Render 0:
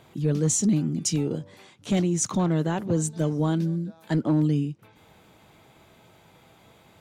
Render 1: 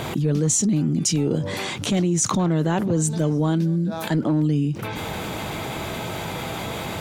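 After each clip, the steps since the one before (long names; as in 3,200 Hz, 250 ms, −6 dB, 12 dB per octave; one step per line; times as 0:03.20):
envelope flattener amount 70%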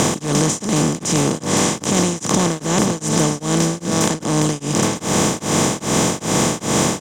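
compressor on every frequency bin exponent 0.2
surface crackle 38 per second −30 dBFS
tremolo along a rectified sine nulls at 2.5 Hz
level −1 dB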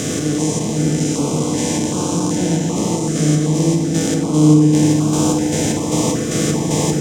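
spectrum averaged block by block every 200 ms
feedback delay network reverb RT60 3 s, low-frequency decay 1.3×, high-frequency decay 0.25×, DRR 0.5 dB
notch on a step sequencer 2.6 Hz 940–1,900 Hz
level −1.5 dB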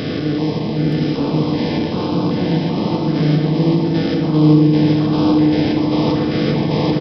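downsampling to 11,025 Hz
single-tap delay 924 ms −6 dB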